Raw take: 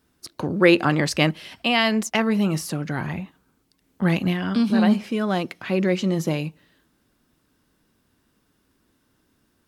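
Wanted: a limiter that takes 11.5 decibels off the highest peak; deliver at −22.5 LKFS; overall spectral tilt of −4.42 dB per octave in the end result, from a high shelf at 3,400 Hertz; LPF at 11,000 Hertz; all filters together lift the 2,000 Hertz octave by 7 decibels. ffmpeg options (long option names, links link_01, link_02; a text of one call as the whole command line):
ffmpeg -i in.wav -af "lowpass=11000,equalizer=frequency=2000:width_type=o:gain=6,highshelf=frequency=3400:gain=7.5,alimiter=limit=-10.5dB:level=0:latency=1" out.wav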